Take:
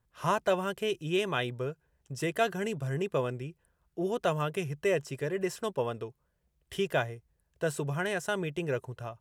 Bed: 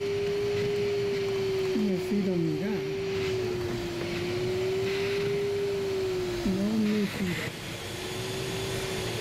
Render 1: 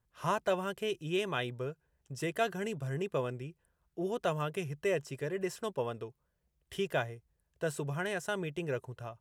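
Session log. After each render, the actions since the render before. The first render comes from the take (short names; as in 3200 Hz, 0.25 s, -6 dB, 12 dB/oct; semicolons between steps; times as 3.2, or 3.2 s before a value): gain -3.5 dB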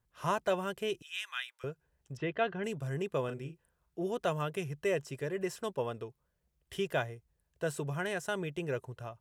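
1.02–1.64 HPF 1400 Hz 24 dB/oct; 2.17–2.64 LPF 3300 Hz 24 dB/oct; 3.25–4.01 doubler 37 ms -8 dB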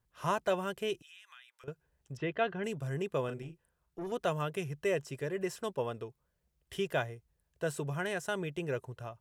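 0.98–1.68 compressor 5:1, threshold -53 dBFS; 3.42–4.12 tube stage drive 35 dB, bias 0.45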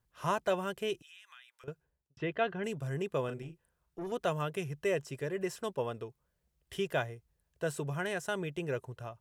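1.7–2.17 studio fade out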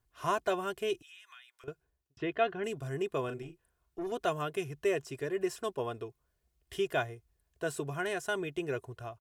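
comb 2.8 ms, depth 50%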